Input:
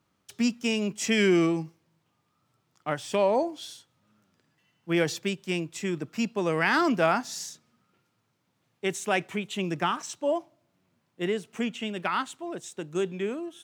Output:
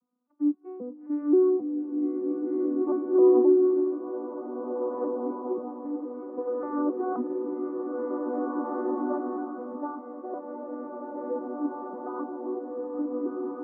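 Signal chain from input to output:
vocoder with an arpeggio as carrier minor triad, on B3, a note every 265 ms
elliptic low-pass filter 1,200 Hz, stop band 70 dB
slow-attack reverb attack 2,080 ms, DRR −3.5 dB
level −3 dB

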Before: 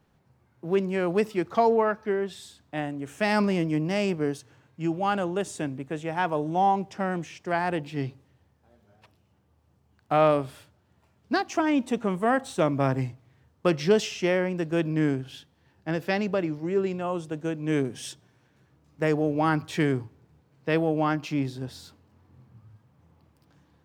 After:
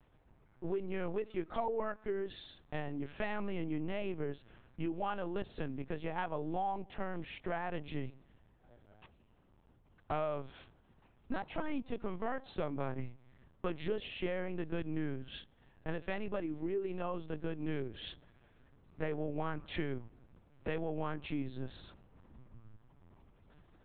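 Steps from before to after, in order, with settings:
downward compressor 4 to 1, threshold −34 dBFS, peak gain reduction 15.5 dB
linear-prediction vocoder at 8 kHz pitch kept
level −1 dB

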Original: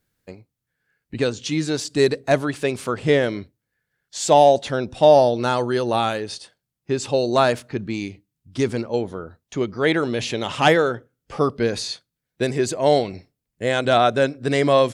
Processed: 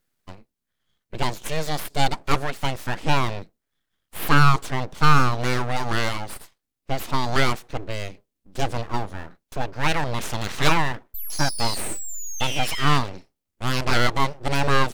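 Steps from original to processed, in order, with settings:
0:11.14–0:12.98: sound drawn into the spectrogram fall 2,300–6,100 Hz −28 dBFS
full-wave rectification
0:13.08–0:13.97: highs frequency-modulated by the lows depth 0.67 ms

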